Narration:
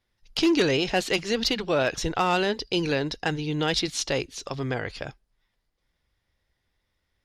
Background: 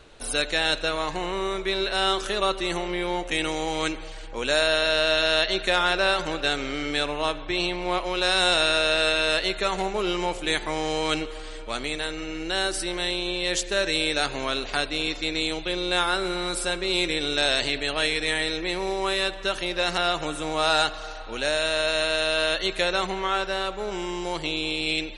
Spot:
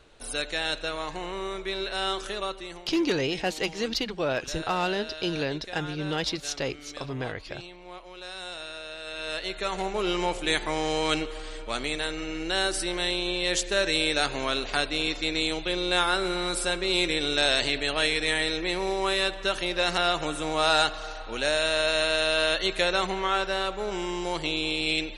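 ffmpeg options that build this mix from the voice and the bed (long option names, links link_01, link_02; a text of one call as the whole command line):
ffmpeg -i stem1.wav -i stem2.wav -filter_complex "[0:a]adelay=2500,volume=-4dB[link_01];[1:a]volume=11.5dB,afade=type=out:start_time=2.27:duration=0.56:silence=0.251189,afade=type=in:start_time=9.04:duration=1.14:silence=0.141254[link_02];[link_01][link_02]amix=inputs=2:normalize=0" out.wav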